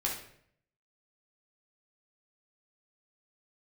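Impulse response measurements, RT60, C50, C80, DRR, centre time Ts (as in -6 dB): 0.65 s, 4.5 dB, 9.0 dB, -3.0 dB, 33 ms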